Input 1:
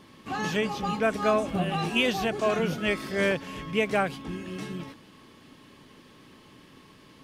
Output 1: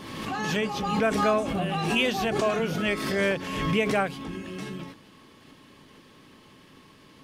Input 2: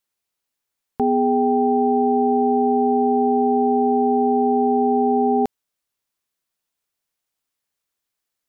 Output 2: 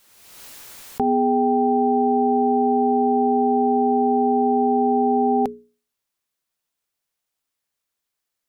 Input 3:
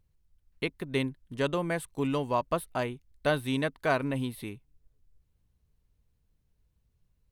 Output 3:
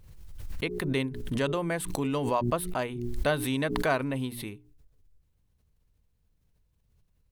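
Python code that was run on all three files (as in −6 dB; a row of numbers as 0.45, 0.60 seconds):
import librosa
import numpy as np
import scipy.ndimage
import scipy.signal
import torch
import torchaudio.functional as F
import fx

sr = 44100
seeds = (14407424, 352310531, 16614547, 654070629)

y = fx.hum_notches(x, sr, base_hz=60, count=7)
y = fx.pre_swell(y, sr, db_per_s=39.0)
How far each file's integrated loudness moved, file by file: +1.0, −0.5, +1.0 LU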